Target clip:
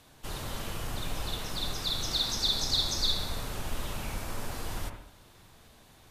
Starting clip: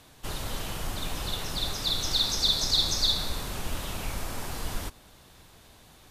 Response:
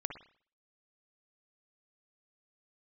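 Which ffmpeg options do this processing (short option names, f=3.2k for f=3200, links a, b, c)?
-filter_complex "[1:a]atrim=start_sample=2205,asetrate=35280,aresample=44100[a];[0:a][a]afir=irnorm=-1:irlink=0,volume=-3.5dB"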